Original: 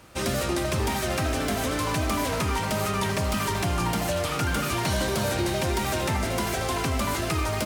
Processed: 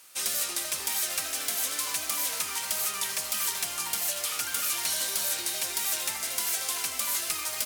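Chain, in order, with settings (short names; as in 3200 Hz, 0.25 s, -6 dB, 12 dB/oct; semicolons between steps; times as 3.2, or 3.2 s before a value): differentiator; one-sided clip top -27 dBFS; gain +6 dB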